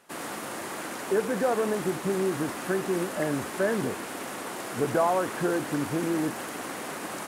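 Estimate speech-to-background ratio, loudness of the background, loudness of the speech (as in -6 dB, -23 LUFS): 6.0 dB, -35.0 LUFS, -29.0 LUFS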